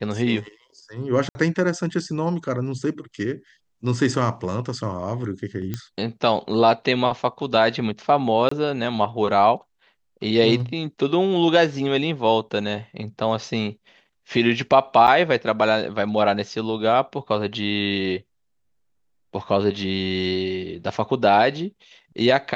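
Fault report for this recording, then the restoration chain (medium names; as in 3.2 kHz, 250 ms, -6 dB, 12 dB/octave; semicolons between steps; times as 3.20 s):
1.29–1.35 s: dropout 60 ms
5.74 s: pop -14 dBFS
8.49–8.51 s: dropout 24 ms
15.07–15.08 s: dropout 8.3 ms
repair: de-click; interpolate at 1.29 s, 60 ms; interpolate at 8.49 s, 24 ms; interpolate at 15.07 s, 8.3 ms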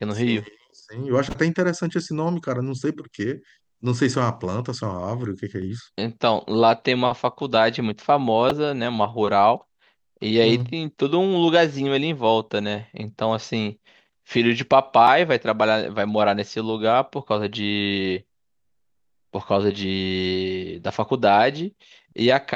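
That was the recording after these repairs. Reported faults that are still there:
nothing left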